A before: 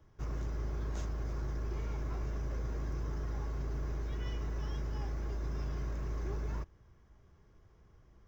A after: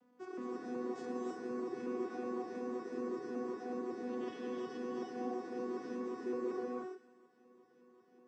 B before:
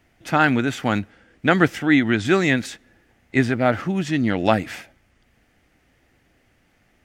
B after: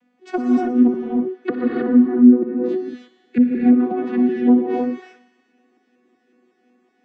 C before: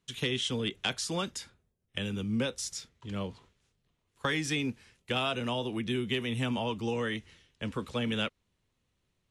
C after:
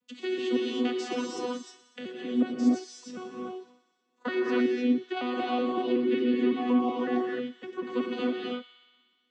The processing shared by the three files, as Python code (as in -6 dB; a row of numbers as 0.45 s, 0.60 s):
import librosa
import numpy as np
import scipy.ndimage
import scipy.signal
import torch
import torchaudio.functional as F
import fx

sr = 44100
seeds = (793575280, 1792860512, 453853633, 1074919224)

y = fx.vocoder_arp(x, sr, chord='bare fifth', root=59, every_ms=186)
y = fx.env_lowpass_down(y, sr, base_hz=350.0, full_db=-18.0)
y = fx.echo_wet_highpass(y, sr, ms=61, feedback_pct=78, hz=1800.0, wet_db=-13.5)
y = fx.rev_gated(y, sr, seeds[0], gate_ms=340, shape='rising', drr_db=-2.0)
y = y * librosa.db_to_amplitude(1.5)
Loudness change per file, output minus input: -2.0 LU, +3.0 LU, +4.0 LU